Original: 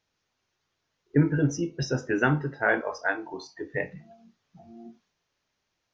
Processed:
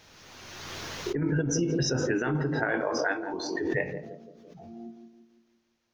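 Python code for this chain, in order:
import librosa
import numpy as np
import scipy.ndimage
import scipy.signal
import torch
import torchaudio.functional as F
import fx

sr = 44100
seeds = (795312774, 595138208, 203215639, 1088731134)

y = fx.over_compress(x, sr, threshold_db=-25.0, ratio=-0.5)
y = fx.echo_banded(y, sr, ms=169, feedback_pct=52, hz=330.0, wet_db=-7.0)
y = fx.pre_swell(y, sr, db_per_s=25.0)
y = y * 10.0 ** (-2.0 / 20.0)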